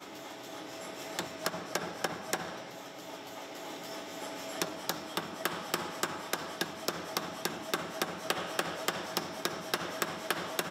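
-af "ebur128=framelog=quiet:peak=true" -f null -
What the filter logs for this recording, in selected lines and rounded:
Integrated loudness:
  I:         -36.5 LUFS
  Threshold: -46.5 LUFS
Loudness range:
  LRA:         4.0 LU
  Threshold: -56.6 LUFS
  LRA low:   -38.9 LUFS
  LRA high:  -34.9 LUFS
True peak:
  Peak:      -13.0 dBFS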